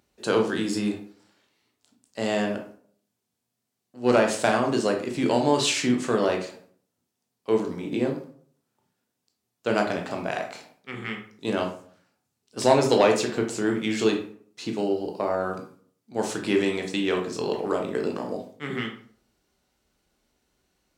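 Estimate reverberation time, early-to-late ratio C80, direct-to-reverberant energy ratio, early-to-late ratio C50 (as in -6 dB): 0.55 s, 12.5 dB, 1.5 dB, 7.5 dB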